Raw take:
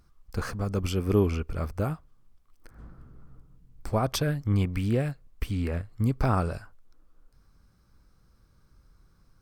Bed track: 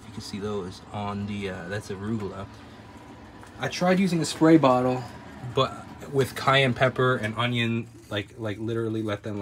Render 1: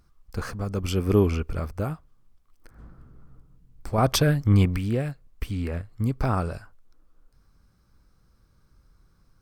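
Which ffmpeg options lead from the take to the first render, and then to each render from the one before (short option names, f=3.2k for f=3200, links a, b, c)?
-filter_complex "[0:a]asettb=1/sr,asplit=3[a][b][c];[a]atrim=end=3.984[d];[b]atrim=start=3.98:end=4.77,asetpts=PTS-STARTPTS,afade=t=in:d=0.004:c=qsin,afade=t=out:st=0.786:d=0.004:c=qsin,acontrast=70[e];[c]atrim=start=4.766[f];[d][e]acrossfade=d=0.004:c1=hsin:c2=qsin[g];[g][f]acrossfade=d=0.004:c1=qsin:c2=hsin,asplit=3[h][i][j];[h]atrim=end=0.882[k];[i]atrim=start=0.878:end=1.602,asetpts=PTS-STARTPTS,volume=3dB[l];[j]atrim=start=1.598[m];[k][l]acrossfade=d=0.004:c1=hsin:c2=hsin[n];[n][m]acrossfade=d=0.004:c1=hsin:c2=hsin"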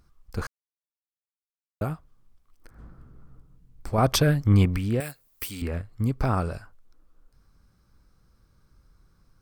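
-filter_complex "[0:a]asettb=1/sr,asplit=3[a][b][c];[a]atrim=end=5.004[d];[b]atrim=start=5:end=5.62,asetpts=PTS-STARTPTS,afade=t=in:d=0.004:c=qsin,afade=t=out:st=0.616:d=0.004:c=qsin,aemphasis=mode=production:type=riaa[e];[c]atrim=start=5.616[f];[d][e]acrossfade=d=0.004:c1=hsin:c2=qsin[g];[g][f]acrossfade=d=0.004:c1=qsin:c2=hsin,asplit=3[h][i][j];[h]atrim=end=0.47,asetpts=PTS-STARTPTS,afade=t=out:st=0.466:d=0.004:c=hsin[k];[i]atrim=start=0.47:end=1.81,asetpts=PTS-STARTPTS,volume=0[l];[j]atrim=start=1.81,asetpts=PTS-STARTPTS,afade=t=in:d=0.004:c=hsin[m];[k][l][m]concat=n=3:v=0:a=1"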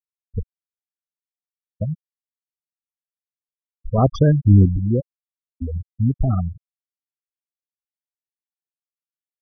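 -af "afftfilt=real='re*gte(hypot(re,im),0.2)':imag='im*gte(hypot(re,im),0.2)':win_size=1024:overlap=0.75,tiltshelf=f=1.4k:g=7"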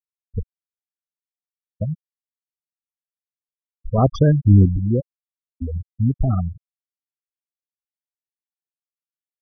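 -af anull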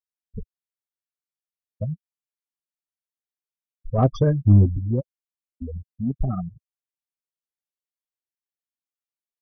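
-af "flanger=delay=3.8:depth=5.5:regen=-20:speed=0.34:shape=triangular,aeval=exprs='0.596*(cos(1*acos(clip(val(0)/0.596,-1,1)))-cos(1*PI/2))+0.0133*(cos(7*acos(clip(val(0)/0.596,-1,1)))-cos(7*PI/2))':c=same"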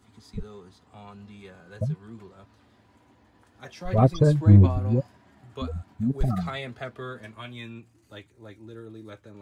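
-filter_complex "[1:a]volume=-14.5dB[a];[0:a][a]amix=inputs=2:normalize=0"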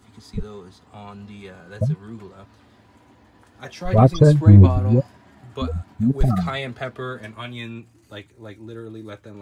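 -af "volume=6.5dB,alimiter=limit=-1dB:level=0:latency=1"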